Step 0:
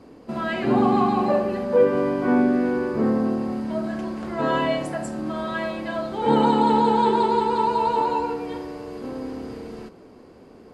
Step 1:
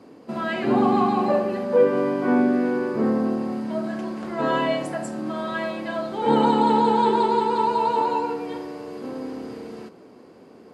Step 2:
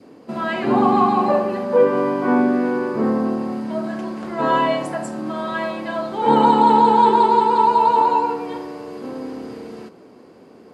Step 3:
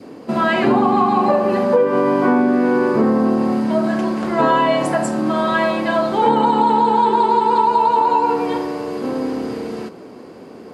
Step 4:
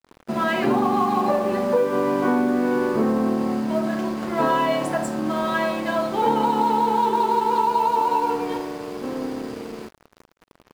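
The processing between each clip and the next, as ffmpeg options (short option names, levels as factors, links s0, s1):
-af "highpass=140"
-af "adynamicequalizer=threshold=0.0178:dfrequency=1000:dqfactor=2.2:tfrequency=1000:tqfactor=2.2:attack=5:release=100:ratio=0.375:range=3:mode=boostabove:tftype=bell,volume=1.26"
-af "acompressor=threshold=0.112:ratio=12,volume=2.51"
-filter_complex "[0:a]asplit=2[s0][s1];[s1]acrusher=bits=4:mix=0:aa=0.000001,volume=0.251[s2];[s0][s2]amix=inputs=2:normalize=0,aeval=exprs='sgn(val(0))*max(abs(val(0))-0.0237,0)':c=same,volume=0.473"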